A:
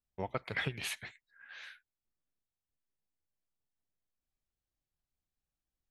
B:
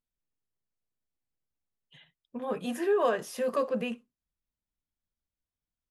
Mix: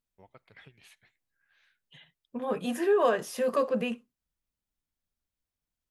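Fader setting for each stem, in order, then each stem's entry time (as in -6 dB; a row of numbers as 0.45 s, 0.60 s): -18.5 dB, +2.0 dB; 0.00 s, 0.00 s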